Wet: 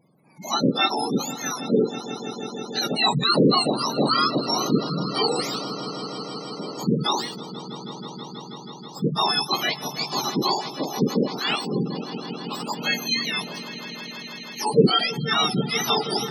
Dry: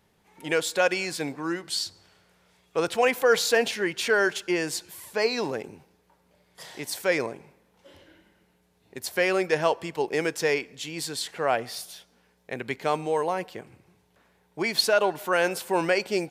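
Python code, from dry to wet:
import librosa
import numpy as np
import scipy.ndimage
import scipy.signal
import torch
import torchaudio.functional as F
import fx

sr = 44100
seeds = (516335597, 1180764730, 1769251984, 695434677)

y = fx.octave_mirror(x, sr, pivot_hz=1400.0)
y = fx.echo_swell(y, sr, ms=161, loudest=5, wet_db=-17)
y = fx.spec_gate(y, sr, threshold_db=-20, keep='strong')
y = y * 10.0 ** (4.5 / 20.0)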